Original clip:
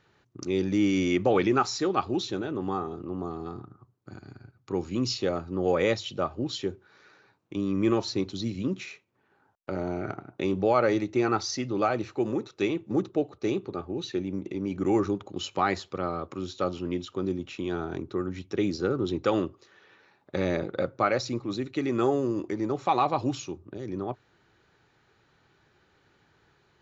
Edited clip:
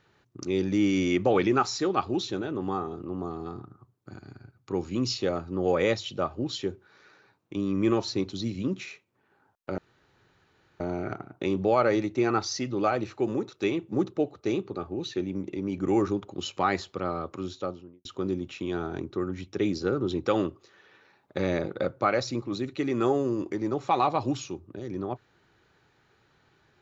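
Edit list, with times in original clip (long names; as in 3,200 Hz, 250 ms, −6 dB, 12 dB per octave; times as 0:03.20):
0:09.78: splice in room tone 1.02 s
0:16.38–0:17.03: fade out and dull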